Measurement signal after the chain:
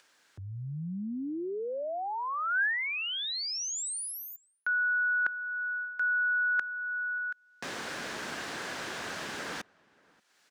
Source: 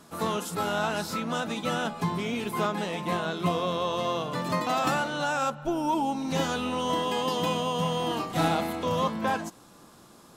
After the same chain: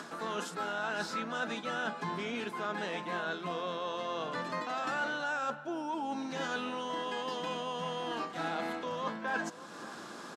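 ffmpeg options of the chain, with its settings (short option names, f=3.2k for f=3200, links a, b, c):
-filter_complex "[0:a]highpass=79,asplit=2[a][b];[b]acompressor=mode=upward:threshold=-29dB:ratio=2.5,volume=0dB[c];[a][c]amix=inputs=2:normalize=0,acrossover=split=190 7900:gain=0.158 1 0.1[d][e][f];[d][e][f]amix=inputs=3:normalize=0,asplit=2[g][h];[h]adelay=583.1,volume=-26dB,highshelf=f=4k:g=-13.1[i];[g][i]amix=inputs=2:normalize=0,areverse,acompressor=threshold=-28dB:ratio=6,areverse,equalizer=f=1.6k:t=o:w=0.43:g=8.5,volume=-6dB"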